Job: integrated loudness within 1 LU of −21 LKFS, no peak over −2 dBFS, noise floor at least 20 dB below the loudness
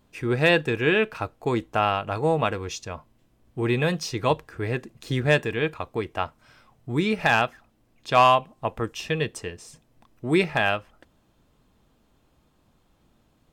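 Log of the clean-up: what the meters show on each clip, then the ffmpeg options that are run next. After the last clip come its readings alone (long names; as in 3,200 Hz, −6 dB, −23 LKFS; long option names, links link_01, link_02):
integrated loudness −24.5 LKFS; sample peak −8.0 dBFS; target loudness −21.0 LKFS
→ -af "volume=3.5dB"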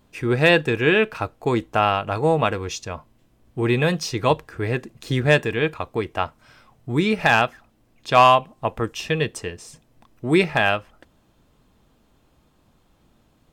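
integrated loudness −21.0 LKFS; sample peak −4.5 dBFS; background noise floor −61 dBFS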